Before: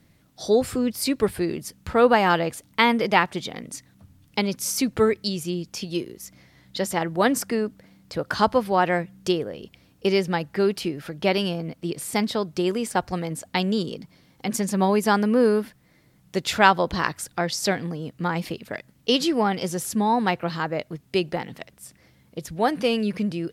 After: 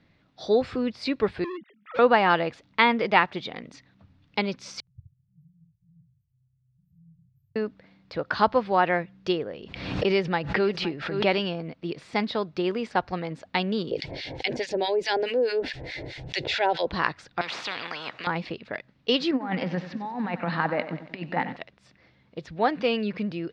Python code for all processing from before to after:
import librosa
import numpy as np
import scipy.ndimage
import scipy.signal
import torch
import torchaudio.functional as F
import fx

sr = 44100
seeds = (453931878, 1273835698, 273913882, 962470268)

y = fx.chain(x, sr, fx.sine_speech(),
    fx.overload_stage(gain_db=30.0), at=(1.44, 1.99))
y = fx.chain(y, sr, fx.brickwall_bandstop(low_hz=150.0, high_hz=12000.0),
    fx.low_shelf(hz=170.0, db=-10.0),
    fx.echo_single(ms=71, db=-5.0), at=(4.8, 7.56))
y = fx.chain(y, sr, fx.echo_single(ms=514, db=-16.0),
    fx.pre_swell(db_per_s=58.0), at=(9.51, 11.4))
y = fx.chain(y, sr, fx.harmonic_tremolo(hz=4.7, depth_pct=100, crossover_hz=1200.0),
    fx.fixed_phaser(hz=490.0, stages=4),
    fx.env_flatten(amount_pct=70), at=(13.91, 16.87))
y = fx.chain(y, sr, fx.highpass(hz=470.0, slope=12),
    fx.high_shelf(hz=2000.0, db=-11.0),
    fx.spectral_comp(ratio=10.0), at=(17.41, 18.27))
y = fx.chain(y, sr, fx.over_compress(threshold_db=-26.0, ratio=-0.5),
    fx.cabinet(low_hz=140.0, low_slope=12, high_hz=4100.0, hz=(180.0, 260.0, 380.0, 860.0, 1800.0, 3300.0), db=(5, 8, -7, 4, 5, -6)),
    fx.echo_crushed(ms=93, feedback_pct=55, bits=8, wet_db=-12), at=(19.31, 21.56))
y = scipy.signal.sosfilt(scipy.signal.butter(4, 4100.0, 'lowpass', fs=sr, output='sos'), y)
y = fx.low_shelf(y, sr, hz=340.0, db=-6.0)
y = fx.notch(y, sr, hz=3100.0, q=20.0)